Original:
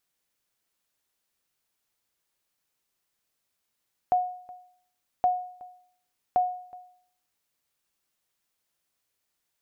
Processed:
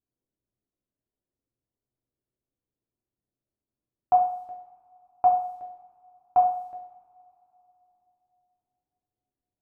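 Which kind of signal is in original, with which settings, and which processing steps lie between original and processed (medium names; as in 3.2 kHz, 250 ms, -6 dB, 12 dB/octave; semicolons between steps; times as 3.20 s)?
sonar ping 727 Hz, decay 0.60 s, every 1.12 s, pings 3, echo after 0.37 s, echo -23 dB -16 dBFS
level-controlled noise filter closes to 340 Hz, open at -30.5 dBFS; two-slope reverb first 0.57 s, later 3.3 s, from -26 dB, DRR -2.5 dB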